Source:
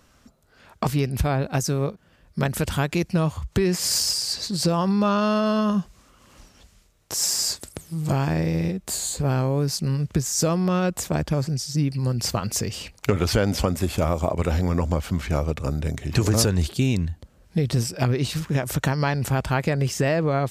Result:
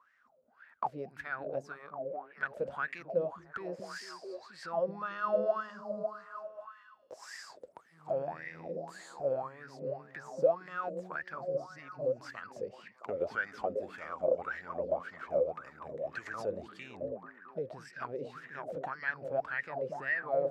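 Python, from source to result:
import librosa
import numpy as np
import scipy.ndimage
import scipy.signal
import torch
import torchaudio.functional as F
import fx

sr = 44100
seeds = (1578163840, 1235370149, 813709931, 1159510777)

y = fx.echo_stepped(x, sr, ms=222, hz=190.0, octaves=0.7, feedback_pct=70, wet_db=-1)
y = fx.wah_lfo(y, sr, hz=1.8, low_hz=510.0, high_hz=1900.0, q=15.0)
y = fx.dynamic_eq(y, sr, hz=970.0, q=1.9, threshold_db=-53.0, ratio=4.0, max_db=-5)
y = F.gain(torch.from_numpy(y), 6.5).numpy()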